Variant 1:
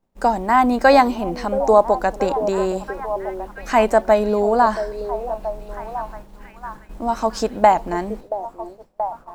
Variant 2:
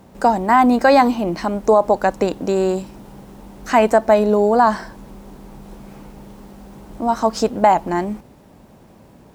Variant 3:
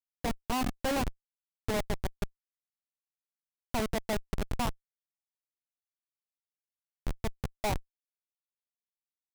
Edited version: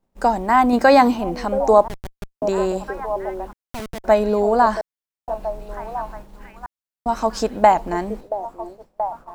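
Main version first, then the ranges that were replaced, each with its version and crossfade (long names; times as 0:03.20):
1
0:00.73–0:01.17: punch in from 2
0:01.88–0:02.42: punch in from 3
0:03.53–0:04.04: punch in from 3
0:04.81–0:05.28: punch in from 3
0:06.66–0:07.06: punch in from 3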